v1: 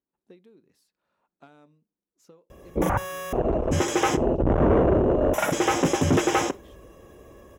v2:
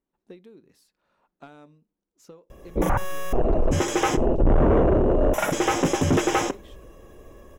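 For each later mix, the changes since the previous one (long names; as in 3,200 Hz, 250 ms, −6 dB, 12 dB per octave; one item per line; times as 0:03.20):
speech +6.0 dB
master: remove high-pass filter 56 Hz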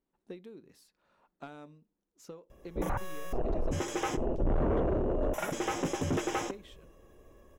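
background −10.5 dB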